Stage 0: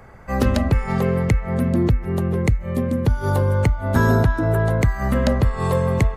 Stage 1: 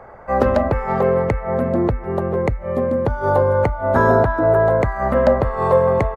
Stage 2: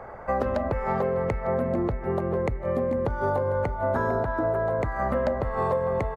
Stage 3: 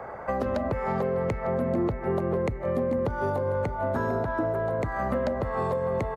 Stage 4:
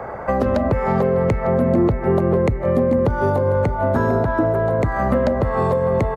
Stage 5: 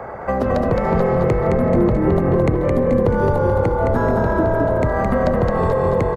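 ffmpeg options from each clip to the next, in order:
-af "firequalizer=gain_entry='entry(160,0);entry(570,15);entry(2800,-2);entry(8300,-10)':delay=0.05:min_phase=1,volume=-4.5dB"
-af "acompressor=threshold=-23dB:ratio=6,aecho=1:1:451|902|1353|1804|2255|2706:0.158|0.0919|0.0533|0.0309|0.0179|0.0104"
-filter_complex "[0:a]highpass=f=110:p=1,acrossover=split=360|3000[a][b][c];[b]acompressor=threshold=-30dB:ratio=6[d];[a][d][c]amix=inputs=3:normalize=0,asplit=2[e][f];[f]asoftclip=type=tanh:threshold=-25dB,volume=-8dB[g];[e][g]amix=inputs=2:normalize=0"
-af "lowshelf=f=410:g=4.5,volume=7dB"
-filter_complex "[0:a]asplit=7[a][b][c][d][e][f][g];[b]adelay=216,afreqshift=-36,volume=-3dB[h];[c]adelay=432,afreqshift=-72,volume=-9.6dB[i];[d]adelay=648,afreqshift=-108,volume=-16.1dB[j];[e]adelay=864,afreqshift=-144,volume=-22.7dB[k];[f]adelay=1080,afreqshift=-180,volume=-29.2dB[l];[g]adelay=1296,afreqshift=-216,volume=-35.8dB[m];[a][h][i][j][k][l][m]amix=inputs=7:normalize=0,volume=-1dB"

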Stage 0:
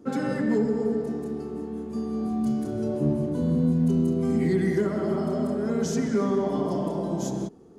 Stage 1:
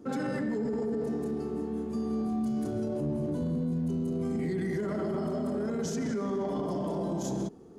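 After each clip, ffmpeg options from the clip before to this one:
-af "alimiter=level_in=1dB:limit=-24dB:level=0:latency=1:release=12,volume=-1dB"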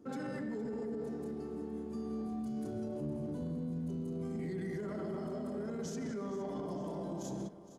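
-af "aecho=1:1:464|928|1392|1856|2320:0.168|0.0907|0.049|0.0264|0.0143,volume=-8dB"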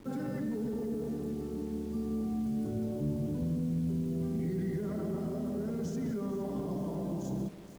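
-filter_complex "[0:a]asplit=2[a][b];[b]adynamicsmooth=sensitivity=3:basefreq=1.7k,volume=-7dB[c];[a][c]amix=inputs=2:normalize=0,acrusher=bits=8:mix=0:aa=0.000001,lowshelf=f=240:g=11,volume=-3.5dB"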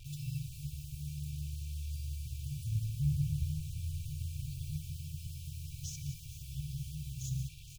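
-af "afftfilt=real='re*(1-between(b*sr/4096,160,2300))':imag='im*(1-between(b*sr/4096,160,2300))':win_size=4096:overlap=0.75,aecho=1:1:2.6:0.4,afftfilt=real='re*(1-between(b*sr/1024,610*pow(2000/610,0.5+0.5*sin(2*PI*5.6*pts/sr))/1.41,610*pow(2000/610,0.5+0.5*sin(2*PI*5.6*pts/sr))*1.41))':imag='im*(1-between(b*sr/1024,610*pow(2000/610,0.5+0.5*sin(2*PI*5.6*pts/sr))/1.41,610*pow(2000/610,0.5+0.5*sin(2*PI*5.6*pts/sr))*1.41))':win_size=1024:overlap=0.75,volume=7dB"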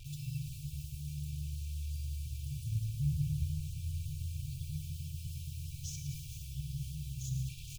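-af "areverse,acompressor=mode=upward:threshold=-37dB:ratio=2.5,areverse,aecho=1:1:107:0.282,volume=-1dB"

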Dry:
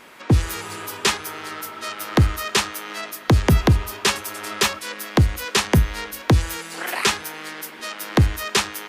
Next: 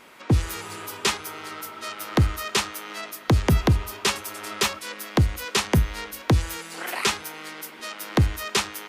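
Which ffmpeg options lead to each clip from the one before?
-af "bandreject=f=1.7k:w=18,volume=-3.5dB"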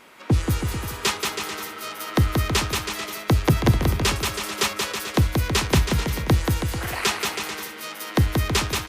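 -af "aecho=1:1:180|324|439.2|531.4|605.1:0.631|0.398|0.251|0.158|0.1"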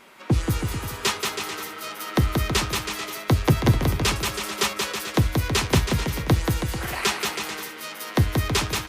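-af "flanger=delay=5.1:depth=2.8:regen=-60:speed=0.43:shape=sinusoidal,volume=3.5dB"

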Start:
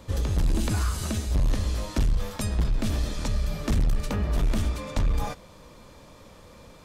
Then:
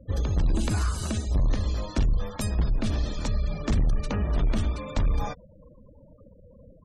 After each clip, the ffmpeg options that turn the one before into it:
-af "afftfilt=real='re*gte(hypot(re,im),0.0112)':imag='im*gte(hypot(re,im),0.0112)':win_size=1024:overlap=0.75"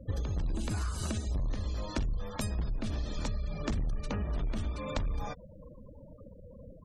-af "acompressor=threshold=-32dB:ratio=6,volume=1.5dB"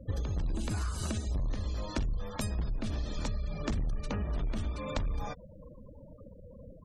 -af anull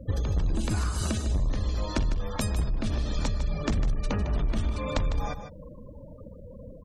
-af "aecho=1:1:153:0.316,volume=5.5dB"

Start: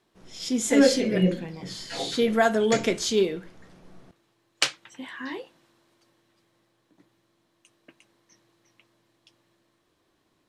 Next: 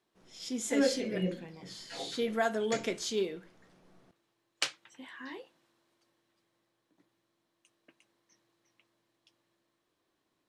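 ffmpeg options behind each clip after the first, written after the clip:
-af "lowshelf=f=140:g=-7.5,volume=-8.5dB"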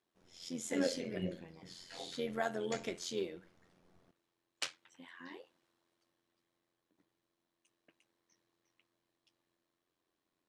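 -af "tremolo=f=87:d=0.667,volume=-3.5dB"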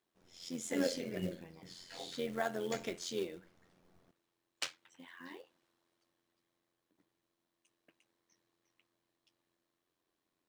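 -af "acrusher=bits=5:mode=log:mix=0:aa=0.000001"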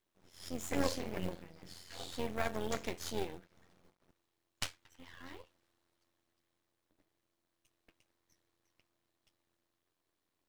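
-af "aeval=exprs='max(val(0),0)':c=same,volume=4dB"

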